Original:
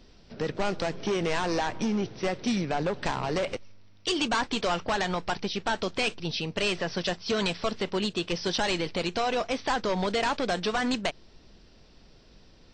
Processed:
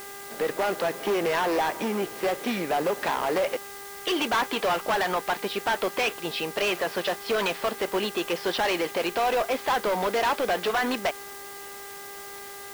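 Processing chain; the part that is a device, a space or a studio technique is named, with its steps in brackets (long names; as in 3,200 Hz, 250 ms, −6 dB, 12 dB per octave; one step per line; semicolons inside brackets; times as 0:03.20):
aircraft radio (band-pass filter 400–2,500 Hz; hard clipping −28 dBFS, distortion −10 dB; hum with harmonics 400 Hz, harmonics 5, −51 dBFS −2 dB per octave; white noise bed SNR 16 dB)
level +7.5 dB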